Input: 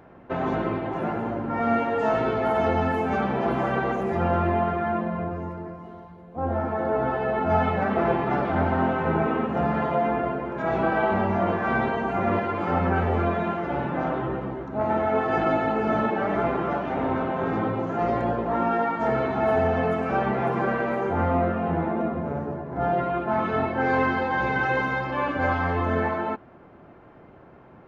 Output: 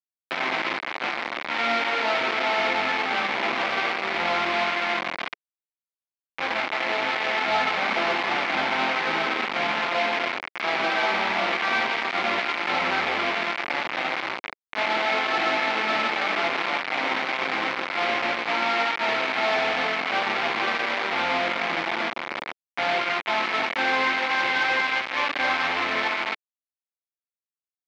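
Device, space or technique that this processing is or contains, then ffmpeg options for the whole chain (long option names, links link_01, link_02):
hand-held game console: -af "acrusher=bits=3:mix=0:aa=0.000001,highpass=410,equalizer=frequency=430:width_type=q:width=4:gain=-7,equalizer=frequency=610:width_type=q:width=4:gain=-4,equalizer=frequency=2200:width_type=q:width=4:gain=8,lowpass=frequency=4200:width=0.5412,lowpass=frequency=4200:width=1.3066"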